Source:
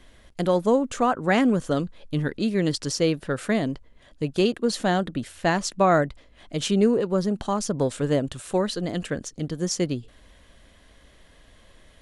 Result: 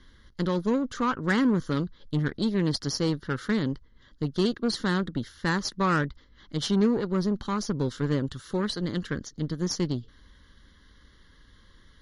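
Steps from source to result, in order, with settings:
phaser with its sweep stopped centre 2,500 Hz, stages 6
harmonic generator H 4 −31 dB, 8 −25 dB, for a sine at −12.5 dBFS
MP3 48 kbit/s 44,100 Hz

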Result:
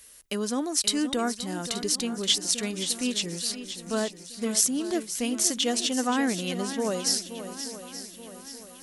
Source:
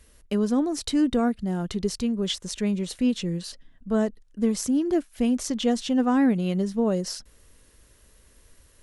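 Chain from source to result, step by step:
spectral tilt +3.5 dB per octave
on a send: feedback echo with a long and a short gap by turns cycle 877 ms, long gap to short 1.5 to 1, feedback 45%, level −11.5 dB

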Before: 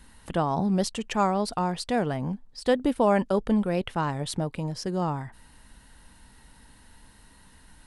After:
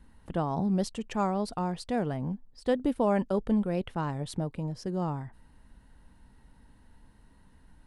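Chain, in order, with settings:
tilt shelving filter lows +3 dB, about 650 Hz
one half of a high-frequency compander decoder only
level −5 dB

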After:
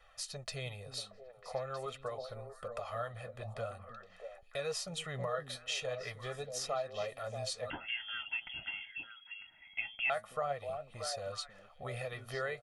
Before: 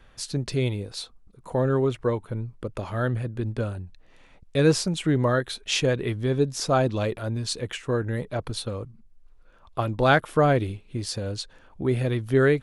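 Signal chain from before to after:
low shelf with overshoot 460 Hz −13 dB, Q 1.5
comb filter 1.6 ms, depth 81%
downward compressor 2.5 to 1, threshold −31 dBFS, peak gain reduction 14 dB
flanger 0.45 Hz, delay 2 ms, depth 9.3 ms, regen +59%
echo through a band-pass that steps 316 ms, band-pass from 220 Hz, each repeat 1.4 octaves, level −3 dB
0:07.70–0:10.10: voice inversion scrambler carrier 3,300 Hz
level −3 dB

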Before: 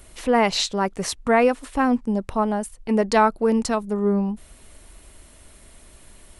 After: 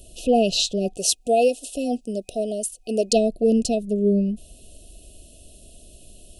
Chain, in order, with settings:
0:00.97–0:03.13: bass and treble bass −14 dB, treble +8 dB
brick-wall band-stop 750–2,500 Hz
level +1.5 dB

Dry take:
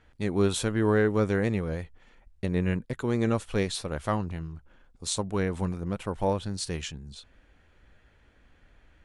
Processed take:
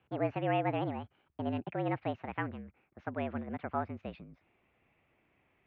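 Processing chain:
gliding playback speed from 180% → 139%
single-sideband voice off tune −51 Hz 150–2,800 Hz
level −7 dB

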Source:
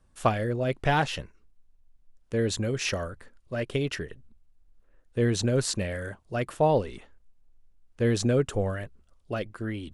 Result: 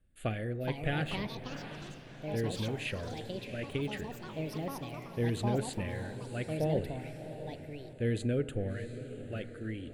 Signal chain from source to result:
phaser with its sweep stopped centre 2,400 Hz, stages 4
feedback delay with all-pass diffusion 693 ms, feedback 44%, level −11 dB
feedback delay network reverb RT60 1.5 s, high-frequency decay 0.25×, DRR 14.5 dB
delay with pitch and tempo change per echo 485 ms, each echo +5 semitones, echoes 3, each echo −6 dB
level −6 dB

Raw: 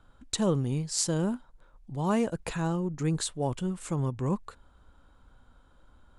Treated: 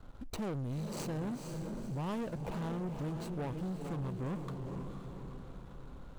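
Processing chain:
running median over 25 samples
downward compressor 2.5 to 1, threshold −43 dBFS, peak gain reduction 14 dB
feedback delay with all-pass diffusion 488 ms, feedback 47%, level −7.5 dB
leveller curve on the samples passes 3
level −3.5 dB

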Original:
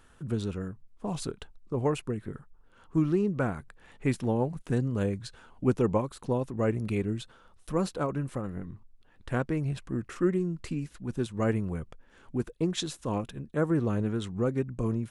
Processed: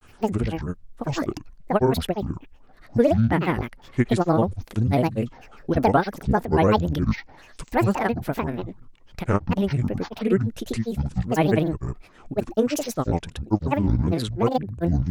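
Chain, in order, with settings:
granular cloud, pitch spread up and down by 12 semitones
level +9 dB

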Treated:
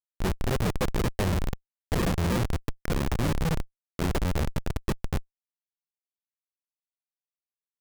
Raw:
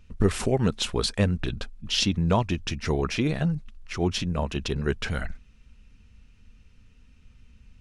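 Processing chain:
adaptive Wiener filter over 41 samples
bass and treble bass +4 dB, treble +14 dB
sample-and-hold swept by an LFO 35×, swing 160% 3.1 Hz
mains-hum notches 50/100/150/200/250/300/350/400/450/500 Hz
comb filter 1.7 ms, depth 30%
on a send at −10.5 dB: convolution reverb RT60 1.2 s, pre-delay 6 ms
on the sum: mains hum 60 Hz, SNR 28 dB
tape wow and flutter 15 cents
in parallel at −3 dB: output level in coarse steps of 20 dB
on the sum: low-shelf EQ 98 Hz −6 dB
comparator with hysteresis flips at −20.5 dBFS

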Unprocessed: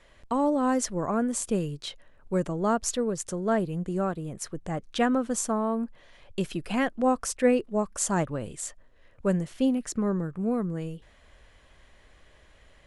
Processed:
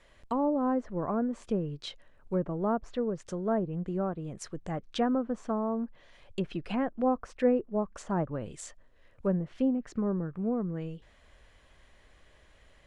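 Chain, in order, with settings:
treble cut that deepens with the level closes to 1,100 Hz, closed at −23 dBFS
level −3 dB

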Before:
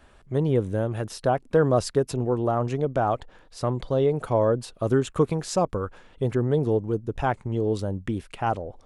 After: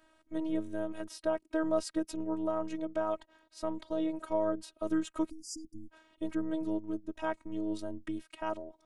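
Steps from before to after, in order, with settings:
time-frequency box erased 0:05.30–0:05.90, 280–4,600 Hz
high-pass filter 70 Hz 24 dB per octave
phases set to zero 317 Hz
level −6.5 dB

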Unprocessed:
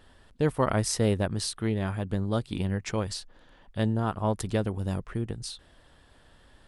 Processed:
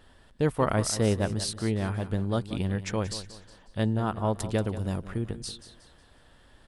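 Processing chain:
repeating echo 182 ms, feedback 37%, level −13.5 dB

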